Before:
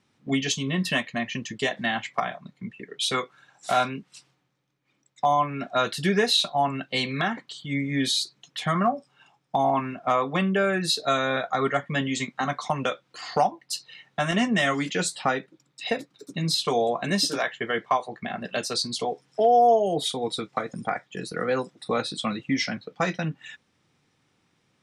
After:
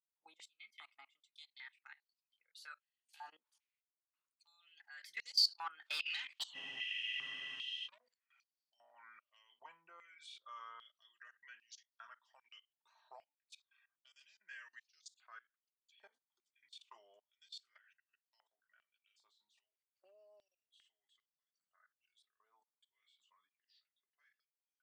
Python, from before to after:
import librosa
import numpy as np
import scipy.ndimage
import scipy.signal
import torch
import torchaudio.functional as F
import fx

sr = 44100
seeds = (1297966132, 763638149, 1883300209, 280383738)

y = fx.doppler_pass(x, sr, speed_mps=51, closest_m=8.2, pass_at_s=6.44)
y = fx.level_steps(y, sr, step_db=20)
y = 10.0 ** (-35.5 / 20.0) * np.tanh(y / 10.0 ** (-35.5 / 20.0))
y = fx.spec_freeze(y, sr, seeds[0], at_s=6.56, hold_s=1.29)
y = fx.filter_held_highpass(y, sr, hz=2.5, low_hz=890.0, high_hz=4600.0)
y = F.gain(torch.from_numpy(y), 2.5).numpy()